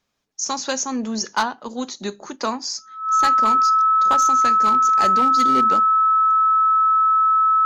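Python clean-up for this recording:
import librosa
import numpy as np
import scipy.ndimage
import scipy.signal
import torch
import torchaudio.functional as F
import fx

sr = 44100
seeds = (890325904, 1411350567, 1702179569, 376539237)

y = fx.fix_declip(x, sr, threshold_db=-11.5)
y = fx.notch(y, sr, hz=1300.0, q=30.0)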